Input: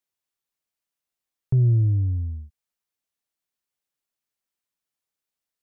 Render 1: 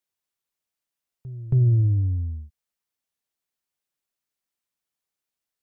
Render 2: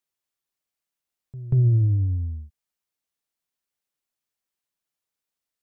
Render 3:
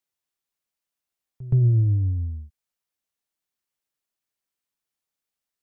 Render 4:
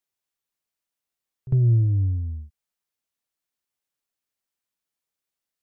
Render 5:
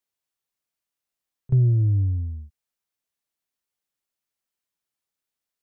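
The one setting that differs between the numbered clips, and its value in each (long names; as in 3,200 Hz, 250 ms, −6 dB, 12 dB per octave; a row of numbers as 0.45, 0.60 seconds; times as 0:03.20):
echo ahead of the sound, delay time: 274, 186, 121, 53, 31 milliseconds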